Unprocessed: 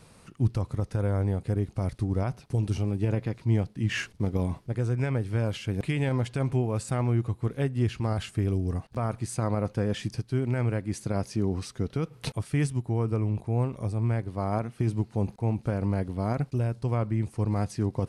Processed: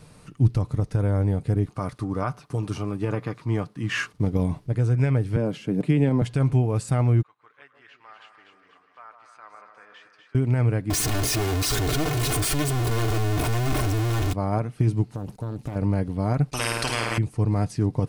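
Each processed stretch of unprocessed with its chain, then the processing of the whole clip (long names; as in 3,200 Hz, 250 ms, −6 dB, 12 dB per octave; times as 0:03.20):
0:01.66–0:04.18: high-pass filter 240 Hz 6 dB per octave + parametric band 1,200 Hz +14 dB 0.5 octaves + notch filter 1,300 Hz, Q 18
0:05.36–0:06.22: high-pass filter 170 Hz 24 dB per octave + tilt shelving filter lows +6.5 dB, about 760 Hz
0:07.22–0:10.35: four-pole ladder band-pass 1,700 Hz, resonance 35% + echo with a time of its own for lows and highs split 1,300 Hz, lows 149 ms, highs 244 ms, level −6 dB
0:10.90–0:14.33: sign of each sample alone + comb filter 2.8 ms, depth 67%
0:15.11–0:15.76: high-shelf EQ 6,200 Hz +10.5 dB + downward compressor 8 to 1, threshold −30 dBFS + highs frequency-modulated by the lows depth 0.93 ms
0:16.53–0:17.18: flutter between parallel walls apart 8.9 metres, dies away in 0.74 s + every bin compressed towards the loudest bin 10 to 1
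whole clip: low-shelf EQ 280 Hz +4.5 dB; comb filter 6.7 ms, depth 32%; level +1.5 dB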